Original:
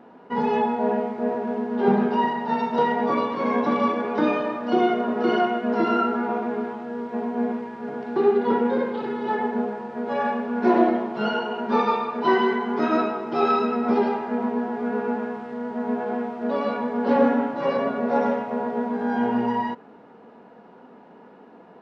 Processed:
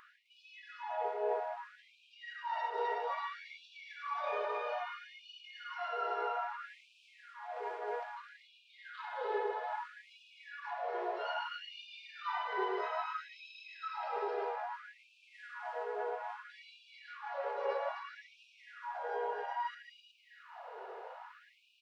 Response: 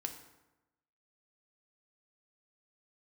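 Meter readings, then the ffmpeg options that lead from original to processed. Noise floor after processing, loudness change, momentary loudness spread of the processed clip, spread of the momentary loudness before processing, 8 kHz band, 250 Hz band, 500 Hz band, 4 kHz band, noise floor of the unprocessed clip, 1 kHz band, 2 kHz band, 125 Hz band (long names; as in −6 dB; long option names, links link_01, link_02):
−66 dBFS, −15.5 dB, 19 LU, 8 LU, can't be measured, below −30 dB, −17.0 dB, −10.5 dB, −48 dBFS, −13.5 dB, −11.5 dB, below −40 dB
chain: -af "areverse,acompressor=threshold=-34dB:ratio=12,areverse,aecho=1:1:257|368|682:0.668|0.562|0.224,acompressor=mode=upward:threshold=-58dB:ratio=2.5,afftfilt=real='re*gte(b*sr/1024,350*pow(2400/350,0.5+0.5*sin(2*PI*0.61*pts/sr)))':imag='im*gte(b*sr/1024,350*pow(2400/350,0.5+0.5*sin(2*PI*0.61*pts/sr)))':win_size=1024:overlap=0.75,volume=1dB"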